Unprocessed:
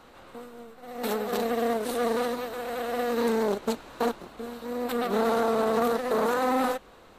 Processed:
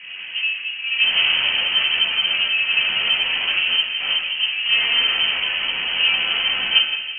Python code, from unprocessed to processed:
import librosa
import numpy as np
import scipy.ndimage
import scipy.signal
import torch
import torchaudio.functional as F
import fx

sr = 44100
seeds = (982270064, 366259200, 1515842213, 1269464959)

y = scipy.signal.sosfilt(scipy.signal.butter(2, 49.0, 'highpass', fs=sr, output='sos'), x)
y = (np.mod(10.0 ** (28.0 / 20.0) * y + 1.0, 2.0) - 1.0) / 10.0 ** (28.0 / 20.0)
y = fx.high_shelf(y, sr, hz=2200.0, db=-10.0)
y = fx.rider(y, sr, range_db=5, speed_s=2.0)
y = fx.tilt_shelf(y, sr, db=7.0, hz=1100.0)
y = fx.tube_stage(y, sr, drive_db=26.0, bias=0.45)
y = fx.doubler(y, sr, ms=12.0, db=-6)
y = fx.echo_feedback(y, sr, ms=172, feedback_pct=35, wet_db=-11.0)
y = fx.room_shoebox(y, sr, seeds[0], volume_m3=350.0, walls='mixed', distance_m=2.1)
y = fx.freq_invert(y, sr, carrier_hz=3100)
y = F.gain(torch.from_numpy(y), 5.5).numpy()